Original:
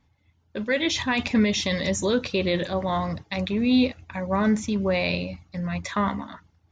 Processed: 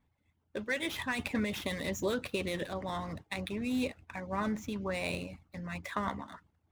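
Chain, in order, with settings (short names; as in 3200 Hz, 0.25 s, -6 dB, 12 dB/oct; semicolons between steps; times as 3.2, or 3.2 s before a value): median filter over 9 samples; harmonic-percussive split harmonic -9 dB; gain -4 dB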